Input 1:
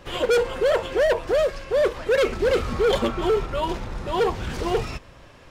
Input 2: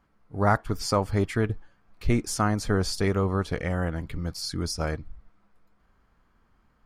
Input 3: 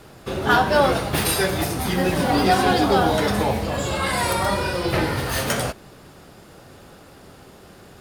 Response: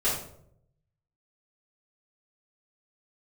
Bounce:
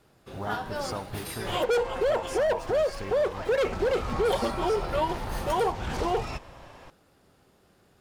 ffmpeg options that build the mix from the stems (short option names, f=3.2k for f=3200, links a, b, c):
-filter_complex "[0:a]adelay=1400,volume=-2dB[a];[1:a]acompressor=threshold=-29dB:ratio=6,aeval=exprs='val(0)*gte(abs(val(0)),0.00631)':c=same,volume=-5.5dB[b];[2:a]volume=-16.5dB,asplit=3[c][d][e];[c]atrim=end=1.64,asetpts=PTS-STARTPTS,afade=t=out:st=1.636:d=0.004:c=hsin[f];[d]atrim=start=1.64:end=4.25,asetpts=PTS-STARTPTS,volume=0[g];[e]atrim=start=4.25,asetpts=PTS-STARTPTS,afade=t=in:d=0.004:c=hsin[h];[f][g][h]concat=n=3:v=0:a=1[i];[a][b]amix=inputs=2:normalize=0,equalizer=f=810:w=1.8:g=8.5,alimiter=limit=-18dB:level=0:latency=1:release=276,volume=0dB[j];[i][j]amix=inputs=2:normalize=0"